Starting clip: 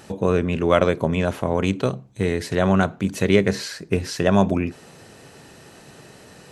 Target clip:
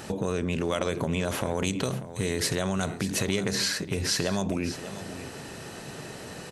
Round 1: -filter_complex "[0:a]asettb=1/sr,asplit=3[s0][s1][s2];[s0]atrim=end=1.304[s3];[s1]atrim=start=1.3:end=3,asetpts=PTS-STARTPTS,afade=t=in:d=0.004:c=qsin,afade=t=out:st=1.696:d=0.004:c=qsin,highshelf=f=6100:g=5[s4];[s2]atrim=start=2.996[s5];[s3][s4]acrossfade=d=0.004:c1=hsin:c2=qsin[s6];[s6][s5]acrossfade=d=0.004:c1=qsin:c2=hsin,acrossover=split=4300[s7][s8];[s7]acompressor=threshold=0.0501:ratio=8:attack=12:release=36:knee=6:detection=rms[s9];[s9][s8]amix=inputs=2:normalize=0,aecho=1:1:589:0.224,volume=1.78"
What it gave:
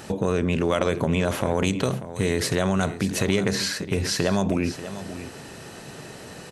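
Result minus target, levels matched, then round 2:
compression: peak gain reduction -5.5 dB
-filter_complex "[0:a]asettb=1/sr,asplit=3[s0][s1][s2];[s0]atrim=end=1.304[s3];[s1]atrim=start=1.3:end=3,asetpts=PTS-STARTPTS,afade=t=in:d=0.004:c=qsin,afade=t=out:st=1.696:d=0.004:c=qsin,highshelf=f=6100:g=5[s4];[s2]atrim=start=2.996[s5];[s3][s4]acrossfade=d=0.004:c1=hsin:c2=qsin[s6];[s6][s5]acrossfade=d=0.004:c1=qsin:c2=hsin,acrossover=split=4300[s7][s8];[s7]acompressor=threshold=0.0237:ratio=8:attack=12:release=36:knee=6:detection=rms[s9];[s9][s8]amix=inputs=2:normalize=0,aecho=1:1:589:0.224,volume=1.78"

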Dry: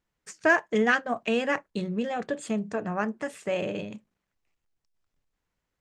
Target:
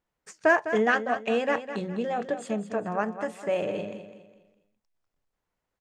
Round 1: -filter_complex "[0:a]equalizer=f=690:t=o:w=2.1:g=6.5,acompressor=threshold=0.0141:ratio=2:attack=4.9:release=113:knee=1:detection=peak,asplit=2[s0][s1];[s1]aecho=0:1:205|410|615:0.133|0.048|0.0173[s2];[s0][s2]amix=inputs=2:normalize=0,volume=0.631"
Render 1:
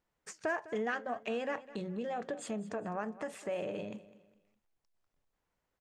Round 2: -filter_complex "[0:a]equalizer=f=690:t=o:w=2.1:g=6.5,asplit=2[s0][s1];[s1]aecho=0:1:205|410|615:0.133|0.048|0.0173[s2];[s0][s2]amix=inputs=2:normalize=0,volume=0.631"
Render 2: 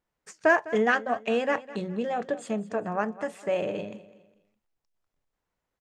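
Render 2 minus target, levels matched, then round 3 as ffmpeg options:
echo-to-direct -6.5 dB
-filter_complex "[0:a]equalizer=f=690:t=o:w=2.1:g=6.5,asplit=2[s0][s1];[s1]aecho=0:1:205|410|615|820:0.282|0.101|0.0365|0.0131[s2];[s0][s2]amix=inputs=2:normalize=0,volume=0.631"

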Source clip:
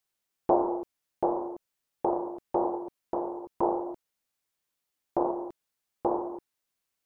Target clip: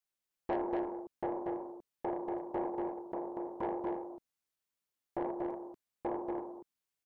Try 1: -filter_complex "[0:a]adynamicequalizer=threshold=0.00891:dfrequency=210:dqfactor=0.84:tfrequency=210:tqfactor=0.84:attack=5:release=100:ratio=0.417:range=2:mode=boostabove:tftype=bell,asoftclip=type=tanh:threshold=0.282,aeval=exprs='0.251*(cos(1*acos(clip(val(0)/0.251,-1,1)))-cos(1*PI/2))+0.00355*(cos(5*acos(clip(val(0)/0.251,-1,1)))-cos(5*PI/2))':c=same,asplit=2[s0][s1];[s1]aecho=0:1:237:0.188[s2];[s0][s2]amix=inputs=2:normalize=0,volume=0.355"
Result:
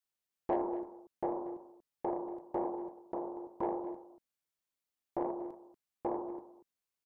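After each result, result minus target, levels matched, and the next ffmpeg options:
echo-to-direct -11 dB; saturation: distortion -9 dB
-filter_complex "[0:a]adynamicequalizer=threshold=0.00891:dfrequency=210:dqfactor=0.84:tfrequency=210:tqfactor=0.84:attack=5:release=100:ratio=0.417:range=2:mode=boostabove:tftype=bell,asoftclip=type=tanh:threshold=0.282,aeval=exprs='0.251*(cos(1*acos(clip(val(0)/0.251,-1,1)))-cos(1*PI/2))+0.00355*(cos(5*acos(clip(val(0)/0.251,-1,1)))-cos(5*PI/2))':c=same,asplit=2[s0][s1];[s1]aecho=0:1:237:0.668[s2];[s0][s2]amix=inputs=2:normalize=0,volume=0.355"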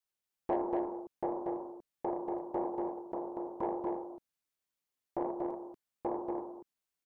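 saturation: distortion -9 dB
-filter_complex "[0:a]adynamicequalizer=threshold=0.00891:dfrequency=210:dqfactor=0.84:tfrequency=210:tqfactor=0.84:attack=5:release=100:ratio=0.417:range=2:mode=boostabove:tftype=bell,asoftclip=type=tanh:threshold=0.126,aeval=exprs='0.251*(cos(1*acos(clip(val(0)/0.251,-1,1)))-cos(1*PI/2))+0.00355*(cos(5*acos(clip(val(0)/0.251,-1,1)))-cos(5*PI/2))':c=same,asplit=2[s0][s1];[s1]aecho=0:1:237:0.668[s2];[s0][s2]amix=inputs=2:normalize=0,volume=0.355"

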